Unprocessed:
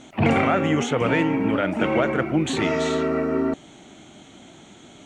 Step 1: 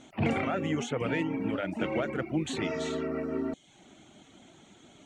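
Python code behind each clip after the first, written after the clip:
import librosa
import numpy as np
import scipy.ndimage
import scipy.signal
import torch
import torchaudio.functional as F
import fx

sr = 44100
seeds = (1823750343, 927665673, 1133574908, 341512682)

y = fx.dereverb_blind(x, sr, rt60_s=0.52)
y = fx.dynamic_eq(y, sr, hz=1100.0, q=1.0, threshold_db=-36.0, ratio=4.0, max_db=-4)
y = y * 10.0 ** (-7.5 / 20.0)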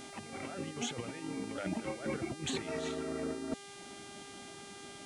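y = fx.over_compress(x, sr, threshold_db=-35.0, ratio=-0.5)
y = fx.dmg_buzz(y, sr, base_hz=400.0, harmonics=27, level_db=-48.0, tilt_db=-3, odd_only=False)
y = y * 10.0 ** (-3.0 / 20.0)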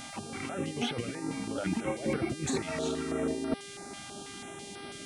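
y = fx.filter_held_notch(x, sr, hz=6.1, low_hz=390.0, high_hz=7000.0)
y = y * 10.0 ** (6.5 / 20.0)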